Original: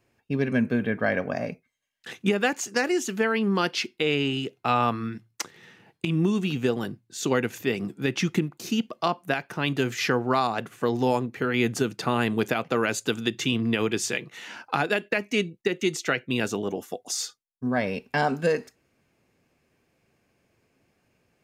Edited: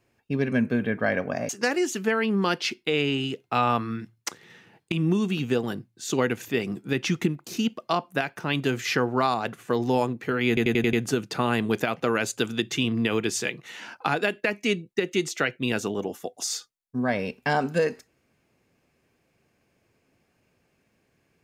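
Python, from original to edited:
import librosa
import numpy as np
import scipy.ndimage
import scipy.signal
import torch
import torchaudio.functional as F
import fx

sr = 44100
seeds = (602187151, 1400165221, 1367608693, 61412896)

y = fx.edit(x, sr, fx.cut(start_s=1.49, length_s=1.13),
    fx.stutter(start_s=11.61, slice_s=0.09, count=6), tone=tone)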